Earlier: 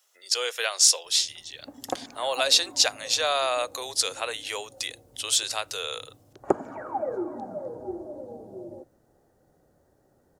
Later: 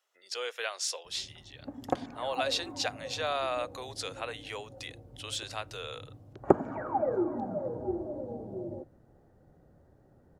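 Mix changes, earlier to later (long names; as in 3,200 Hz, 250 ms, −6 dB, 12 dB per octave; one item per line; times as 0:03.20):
speech −6.0 dB
master: add bass and treble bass +8 dB, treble −12 dB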